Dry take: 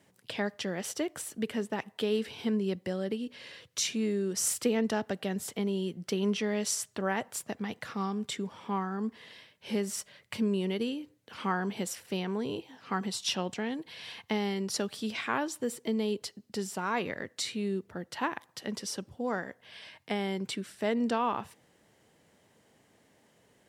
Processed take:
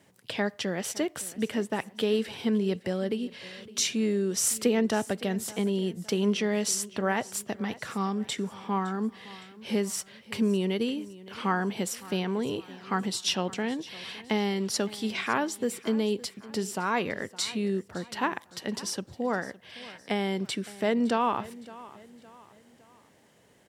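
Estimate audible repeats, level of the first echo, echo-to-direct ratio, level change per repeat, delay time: 3, −19.0 dB, −18.0 dB, −7.5 dB, 562 ms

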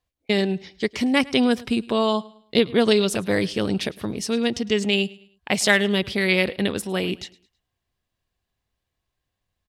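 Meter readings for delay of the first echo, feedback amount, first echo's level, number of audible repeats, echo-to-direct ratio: 106 ms, 36%, −22.0 dB, 2, −21.5 dB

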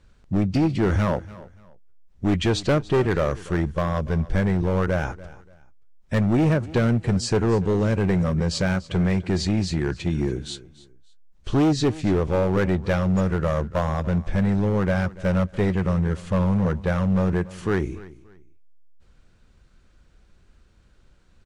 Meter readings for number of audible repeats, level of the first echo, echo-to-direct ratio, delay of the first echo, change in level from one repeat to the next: 2, −19.0 dB, −18.5 dB, 289 ms, −11.0 dB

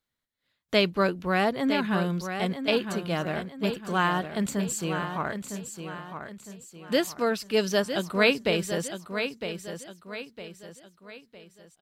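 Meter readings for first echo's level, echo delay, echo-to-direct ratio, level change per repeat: −8.5 dB, 958 ms, −7.5 dB, −8.0 dB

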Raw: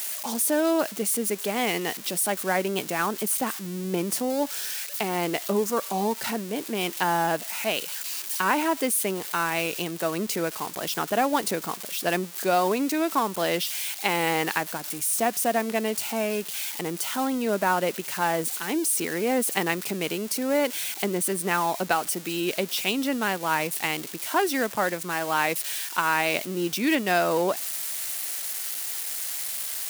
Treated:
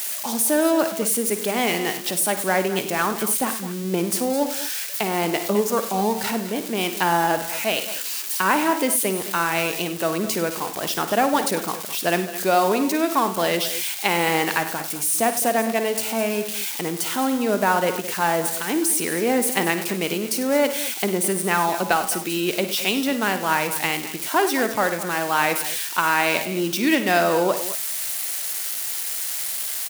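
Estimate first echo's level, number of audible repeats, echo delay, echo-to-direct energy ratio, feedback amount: −13.0 dB, 3, 53 ms, −8.0 dB, repeats not evenly spaced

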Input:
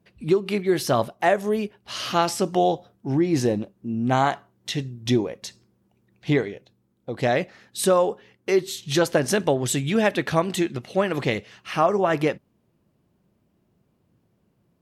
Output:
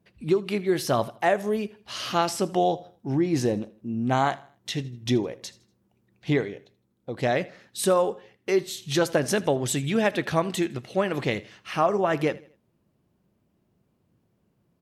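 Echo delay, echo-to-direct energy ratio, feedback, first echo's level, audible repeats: 80 ms, −20.0 dB, 38%, −20.5 dB, 2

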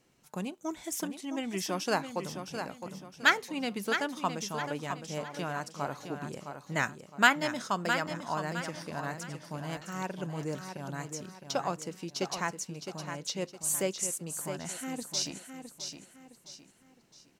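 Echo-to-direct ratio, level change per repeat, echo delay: −7.5 dB, −9.0 dB, 662 ms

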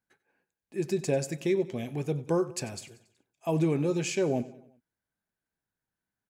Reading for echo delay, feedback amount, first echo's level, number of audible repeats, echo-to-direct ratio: 93 ms, 52%, −18.0 dB, 3, −16.5 dB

